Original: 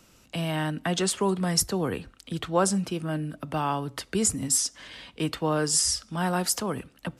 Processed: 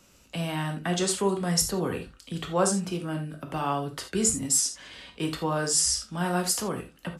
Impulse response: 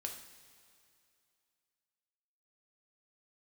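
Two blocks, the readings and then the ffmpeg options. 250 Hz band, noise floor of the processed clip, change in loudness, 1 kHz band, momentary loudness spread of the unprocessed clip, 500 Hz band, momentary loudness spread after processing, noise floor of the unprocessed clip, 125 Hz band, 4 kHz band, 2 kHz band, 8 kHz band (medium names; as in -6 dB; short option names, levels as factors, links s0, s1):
-1.0 dB, -58 dBFS, -0.5 dB, -1.0 dB, 11 LU, -0.5 dB, 12 LU, -58 dBFS, -1.0 dB, -0.5 dB, -1.0 dB, +1.0 dB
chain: -filter_complex "[0:a]equalizer=f=7000:w=2.7:g=2.5[s0];[1:a]atrim=start_sample=2205,afade=t=out:st=0.14:d=0.01,atrim=end_sample=6615[s1];[s0][s1]afir=irnorm=-1:irlink=0,volume=1.12"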